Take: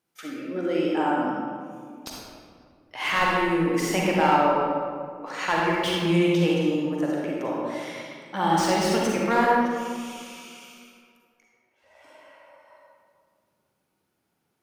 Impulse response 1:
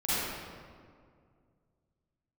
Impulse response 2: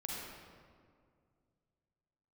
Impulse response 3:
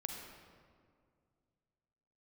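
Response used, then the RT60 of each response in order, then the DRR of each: 2; 2.1 s, 2.1 s, 2.1 s; -13.0 dB, -4.0 dB, 2.0 dB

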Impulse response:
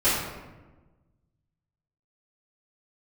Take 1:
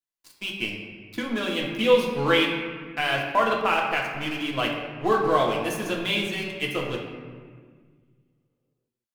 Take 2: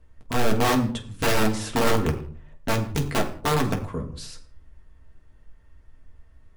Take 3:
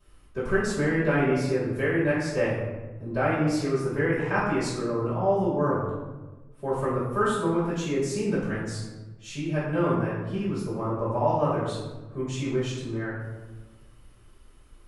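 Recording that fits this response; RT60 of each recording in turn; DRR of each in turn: 3; 1.7 s, 0.55 s, 1.2 s; -1.5 dB, 1.0 dB, -16.5 dB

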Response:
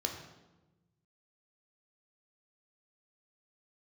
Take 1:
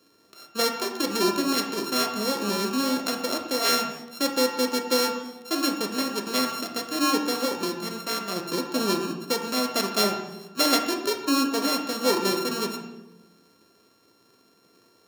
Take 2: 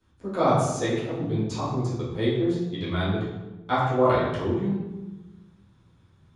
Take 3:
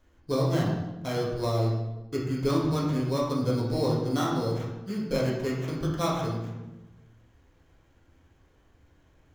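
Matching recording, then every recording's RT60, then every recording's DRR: 1; 1.1 s, 1.1 s, 1.1 s; 2.0 dB, -13.5 dB, -5.5 dB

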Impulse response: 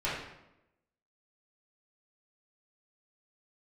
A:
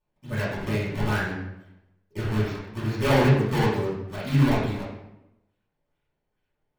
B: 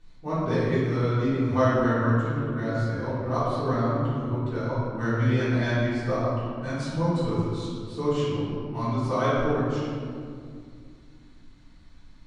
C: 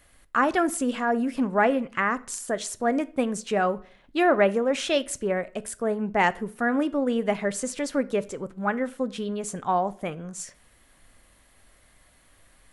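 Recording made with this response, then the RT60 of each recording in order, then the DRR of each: A; 0.90 s, 2.3 s, 0.45 s; -11.0 dB, -14.5 dB, 14.0 dB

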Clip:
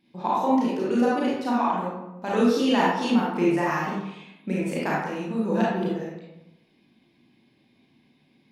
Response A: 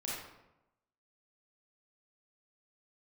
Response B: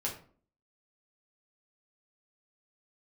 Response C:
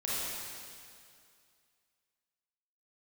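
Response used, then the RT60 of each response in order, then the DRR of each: A; 0.95 s, 0.45 s, 2.3 s; -6.5 dB, -3.5 dB, -8.5 dB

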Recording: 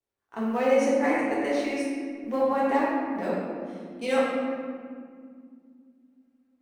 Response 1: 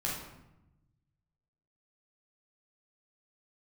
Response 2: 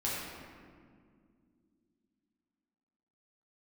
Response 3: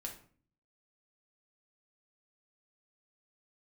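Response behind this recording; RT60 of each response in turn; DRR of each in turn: 2; 0.90 s, 2.2 s, 0.45 s; -4.5 dB, -7.5 dB, 0.5 dB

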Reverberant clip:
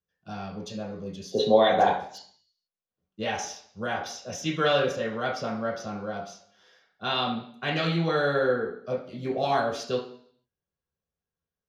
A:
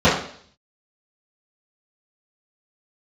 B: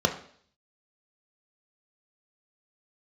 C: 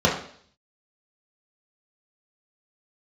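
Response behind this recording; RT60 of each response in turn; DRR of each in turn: C; 0.55 s, 0.55 s, 0.55 s; -14.0 dB, 4.0 dB, -4.0 dB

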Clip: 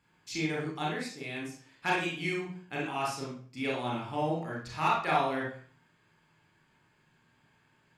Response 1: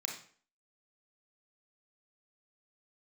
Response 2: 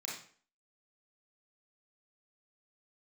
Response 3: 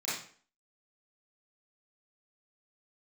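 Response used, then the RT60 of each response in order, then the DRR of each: 2; 0.45 s, 0.45 s, 0.45 s; 0.5 dB, -4.5 dB, -11.0 dB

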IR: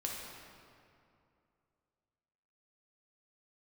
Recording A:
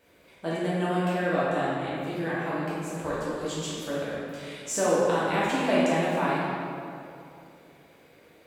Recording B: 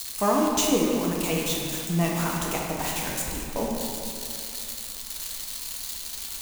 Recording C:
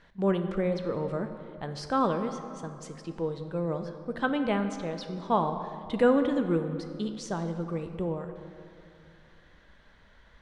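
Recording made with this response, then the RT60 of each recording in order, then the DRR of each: B; 2.5 s, 2.5 s, 2.5 s; -9.5 dB, -2.5 dB, 7.0 dB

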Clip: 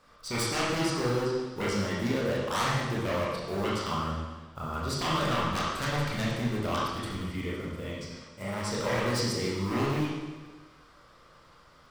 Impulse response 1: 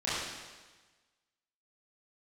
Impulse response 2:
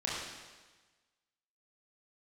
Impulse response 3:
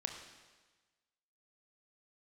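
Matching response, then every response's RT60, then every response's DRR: 2; 1.3 s, 1.3 s, 1.3 s; -11.5 dB, -6.5 dB, 3.5 dB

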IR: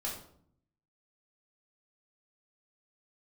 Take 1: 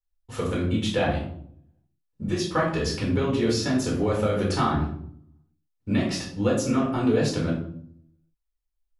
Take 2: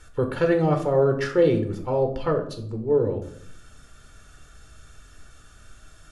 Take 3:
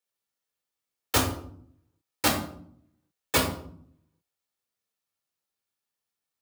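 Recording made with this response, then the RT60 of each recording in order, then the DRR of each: 1; 0.60 s, 0.60 s, 0.60 s; -4.0 dB, 5.0 dB, 0.0 dB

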